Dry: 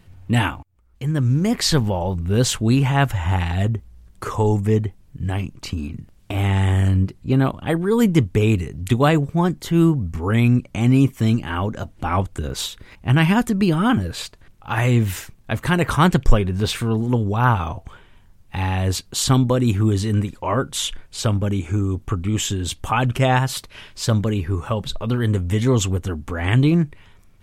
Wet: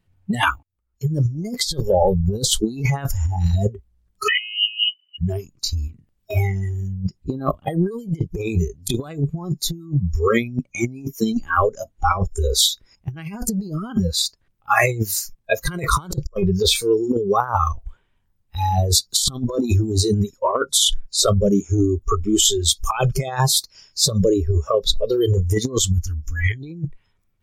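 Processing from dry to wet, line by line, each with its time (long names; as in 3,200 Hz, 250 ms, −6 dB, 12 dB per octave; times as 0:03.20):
0:04.28–0:05.18: voice inversion scrambler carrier 3,000 Hz
0:25.78–0:26.51: flat-topped bell 620 Hz −14 dB
whole clip: noise reduction from a noise print of the clip's start 28 dB; compressor whose output falls as the input rises −25 dBFS, ratio −0.5; level +6 dB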